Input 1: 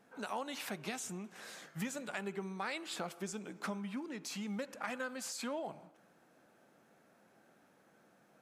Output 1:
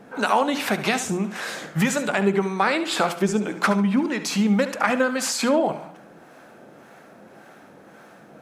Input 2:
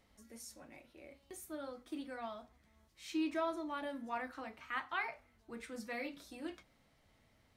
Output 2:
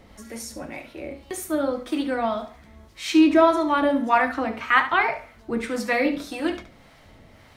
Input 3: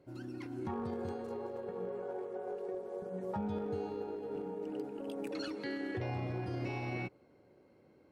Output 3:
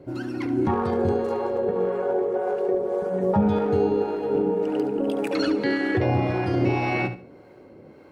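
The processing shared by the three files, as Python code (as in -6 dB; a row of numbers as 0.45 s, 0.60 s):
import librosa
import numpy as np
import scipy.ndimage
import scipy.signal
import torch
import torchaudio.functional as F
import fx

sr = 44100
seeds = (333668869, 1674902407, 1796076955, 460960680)

p1 = fx.high_shelf(x, sr, hz=4100.0, db=-7.0)
p2 = fx.hum_notches(p1, sr, base_hz=60, count=4)
p3 = fx.harmonic_tremolo(p2, sr, hz=1.8, depth_pct=50, crossover_hz=650.0)
p4 = p3 + fx.echo_feedback(p3, sr, ms=71, feedback_pct=24, wet_db=-12.0, dry=0)
y = p4 * 10.0 ** (-24 / 20.0) / np.sqrt(np.mean(np.square(p4)))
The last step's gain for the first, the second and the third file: +22.0 dB, +23.0 dB, +18.5 dB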